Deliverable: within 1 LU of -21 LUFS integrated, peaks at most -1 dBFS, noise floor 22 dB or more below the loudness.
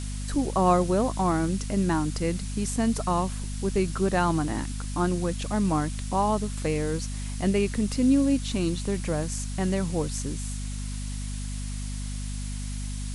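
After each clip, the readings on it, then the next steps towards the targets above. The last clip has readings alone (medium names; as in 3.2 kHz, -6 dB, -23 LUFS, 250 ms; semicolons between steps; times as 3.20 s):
hum 50 Hz; highest harmonic 250 Hz; hum level -30 dBFS; noise floor -33 dBFS; noise floor target -50 dBFS; loudness -27.5 LUFS; peak level -9.5 dBFS; loudness target -21.0 LUFS
-> de-hum 50 Hz, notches 5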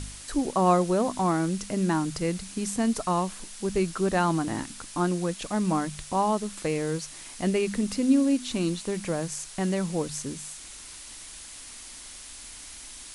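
hum not found; noise floor -44 dBFS; noise floor target -50 dBFS
-> noise print and reduce 6 dB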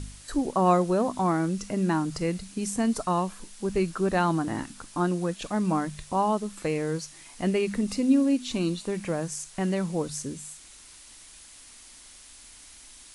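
noise floor -50 dBFS; loudness -27.5 LUFS; peak level -10.5 dBFS; loudness target -21.0 LUFS
-> trim +6.5 dB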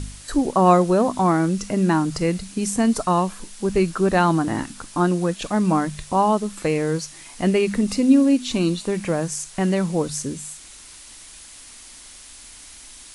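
loudness -21.0 LUFS; peak level -4.0 dBFS; noise floor -43 dBFS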